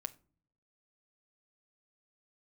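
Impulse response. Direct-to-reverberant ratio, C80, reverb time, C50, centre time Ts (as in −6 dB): 11.0 dB, 25.5 dB, 0.45 s, 20.0 dB, 2 ms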